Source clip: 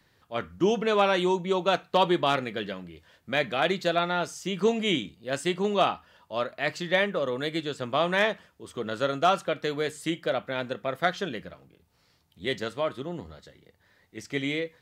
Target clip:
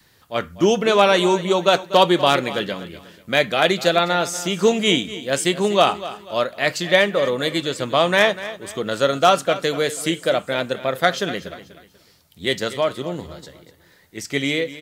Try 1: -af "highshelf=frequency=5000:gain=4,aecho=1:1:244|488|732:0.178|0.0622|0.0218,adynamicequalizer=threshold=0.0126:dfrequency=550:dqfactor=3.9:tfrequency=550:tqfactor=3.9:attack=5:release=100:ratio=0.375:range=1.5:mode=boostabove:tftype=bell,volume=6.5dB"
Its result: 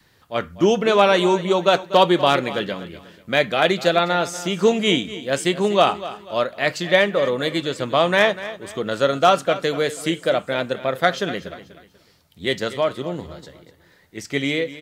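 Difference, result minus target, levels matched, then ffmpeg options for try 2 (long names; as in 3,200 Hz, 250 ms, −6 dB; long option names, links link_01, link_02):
8,000 Hz band −4.0 dB
-af "highshelf=frequency=5000:gain=11,aecho=1:1:244|488|732:0.178|0.0622|0.0218,adynamicequalizer=threshold=0.0126:dfrequency=550:dqfactor=3.9:tfrequency=550:tqfactor=3.9:attack=5:release=100:ratio=0.375:range=1.5:mode=boostabove:tftype=bell,volume=6.5dB"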